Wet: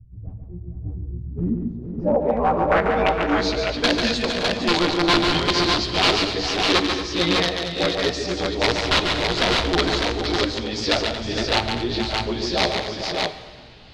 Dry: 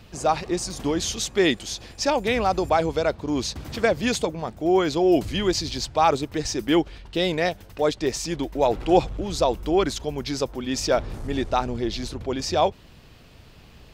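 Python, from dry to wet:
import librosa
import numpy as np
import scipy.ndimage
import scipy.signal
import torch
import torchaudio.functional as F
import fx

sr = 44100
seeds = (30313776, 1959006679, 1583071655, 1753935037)

p1 = fx.frame_reverse(x, sr, frame_ms=34.0)
p2 = fx.dynamic_eq(p1, sr, hz=3300.0, q=2.3, threshold_db=-45.0, ratio=4.0, max_db=-5)
p3 = (np.mod(10.0 ** (16.0 / 20.0) * p2 + 1.0, 2.0) - 1.0) / 10.0 ** (16.0 / 20.0)
p4 = fx.filter_sweep_lowpass(p3, sr, from_hz=100.0, to_hz=4100.0, start_s=1.08, end_s=3.32, q=2.8)
p5 = p4 + fx.echo_multitap(p4, sr, ms=(142, 229, 401, 461, 568, 605), db=(-5.5, -13.0, -18.5, -9.0, -11.0, -3.5), dry=0)
p6 = fx.rev_plate(p5, sr, seeds[0], rt60_s=1.9, hf_ratio=0.8, predelay_ms=0, drr_db=11.5)
y = F.gain(torch.from_numpy(p6), 1.5).numpy()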